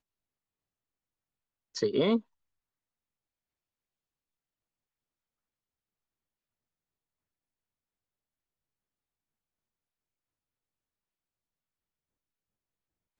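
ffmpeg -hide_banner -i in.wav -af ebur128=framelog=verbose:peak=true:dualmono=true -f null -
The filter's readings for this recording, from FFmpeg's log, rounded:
Integrated loudness:
  I:         -26.2 LUFS
  Threshold: -37.2 LUFS
Loudness range:
  LRA:         2.1 LU
  Threshold: -52.7 LUFS
  LRA low:   -34.5 LUFS
  LRA high:  -32.5 LUFS
True peak:
  Peak:      -14.9 dBFS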